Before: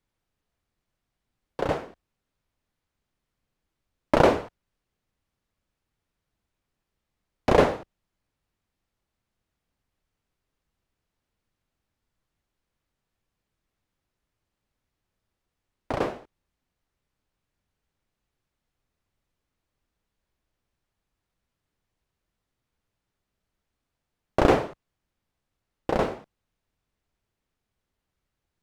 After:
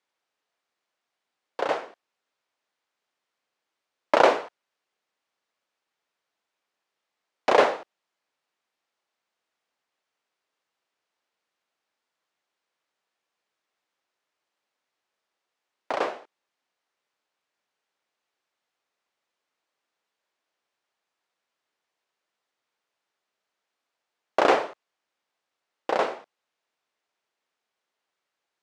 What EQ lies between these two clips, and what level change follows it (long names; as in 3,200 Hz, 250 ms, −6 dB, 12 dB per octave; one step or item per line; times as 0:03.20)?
band-pass filter 540–7,200 Hz
+3.5 dB